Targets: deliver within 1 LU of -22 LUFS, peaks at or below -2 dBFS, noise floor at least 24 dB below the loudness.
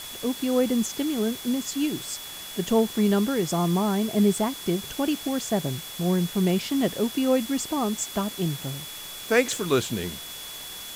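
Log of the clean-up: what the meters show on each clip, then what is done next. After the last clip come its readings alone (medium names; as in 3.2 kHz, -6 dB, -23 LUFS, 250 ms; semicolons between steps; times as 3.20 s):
steady tone 3.4 kHz; tone level -40 dBFS; noise floor -39 dBFS; noise floor target -50 dBFS; loudness -26.0 LUFS; peak level -7.0 dBFS; loudness target -22.0 LUFS
-> band-stop 3.4 kHz, Q 30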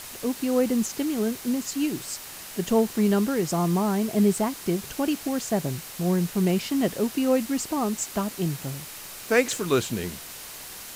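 steady tone not found; noise floor -40 dBFS; noise floor target -50 dBFS
-> noise reduction 10 dB, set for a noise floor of -40 dBFS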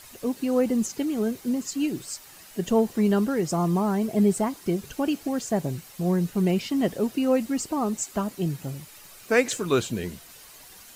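noise floor -48 dBFS; noise floor target -50 dBFS
-> noise reduction 6 dB, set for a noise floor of -48 dBFS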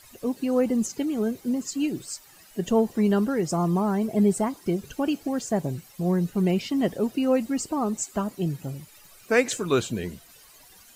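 noise floor -52 dBFS; loudness -26.0 LUFS; peak level -7.5 dBFS; loudness target -22.0 LUFS
-> trim +4 dB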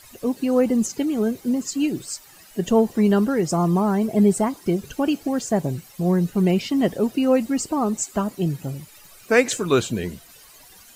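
loudness -22.0 LUFS; peak level -3.5 dBFS; noise floor -48 dBFS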